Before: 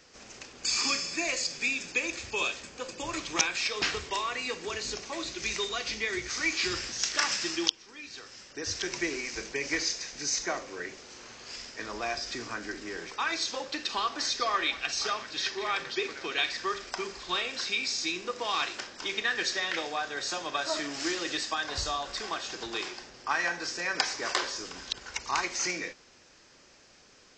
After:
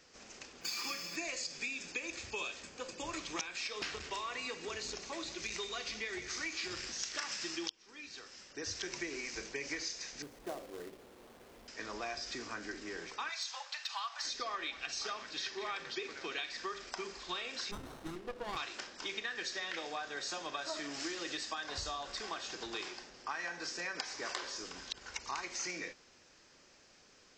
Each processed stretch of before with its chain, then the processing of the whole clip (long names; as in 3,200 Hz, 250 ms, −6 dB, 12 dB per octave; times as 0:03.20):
0:00.61–0:01.16: running median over 5 samples + high-pass filter 120 Hz 24 dB per octave + comb filter 5.9 ms, depth 48%
0:03.73–0:06.87: single-tap delay 183 ms −15 dB + saturating transformer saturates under 1,300 Hz
0:10.22–0:11.68: Chebyshev low-pass filter 650 Hz + log-companded quantiser 4 bits
0:13.29–0:14.25: Butterworth high-pass 730 Hz + hard clipping −21.5 dBFS
0:17.71–0:18.57: high-frequency loss of the air 220 metres + windowed peak hold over 17 samples
whole clip: mains-hum notches 60/120 Hz; downward compressor, threshold −31 dBFS; level −5 dB